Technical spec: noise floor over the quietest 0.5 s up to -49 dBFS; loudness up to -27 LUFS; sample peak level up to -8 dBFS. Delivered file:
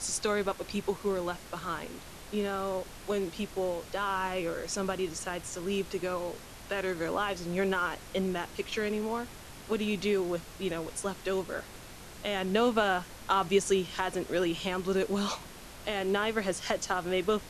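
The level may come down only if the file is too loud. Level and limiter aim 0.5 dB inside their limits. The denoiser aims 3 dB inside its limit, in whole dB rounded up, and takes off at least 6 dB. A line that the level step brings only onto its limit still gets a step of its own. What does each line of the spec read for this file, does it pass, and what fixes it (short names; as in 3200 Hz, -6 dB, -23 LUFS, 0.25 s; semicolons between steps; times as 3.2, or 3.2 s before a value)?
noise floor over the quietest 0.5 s -47 dBFS: fail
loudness -32.0 LUFS: OK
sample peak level -13.5 dBFS: OK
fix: denoiser 6 dB, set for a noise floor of -47 dBFS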